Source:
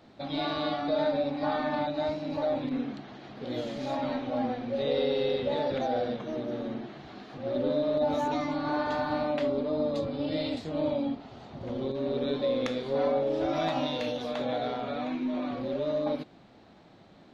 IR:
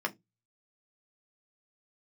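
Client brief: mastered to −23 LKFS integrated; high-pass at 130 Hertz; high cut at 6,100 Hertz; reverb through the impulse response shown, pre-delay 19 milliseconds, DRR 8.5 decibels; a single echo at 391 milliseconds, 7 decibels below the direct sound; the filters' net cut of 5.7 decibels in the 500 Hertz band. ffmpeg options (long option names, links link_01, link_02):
-filter_complex "[0:a]highpass=130,lowpass=6100,equalizer=frequency=500:width_type=o:gain=-7,aecho=1:1:391:0.447,asplit=2[link_01][link_02];[1:a]atrim=start_sample=2205,adelay=19[link_03];[link_02][link_03]afir=irnorm=-1:irlink=0,volume=-15dB[link_04];[link_01][link_04]amix=inputs=2:normalize=0,volume=10.5dB"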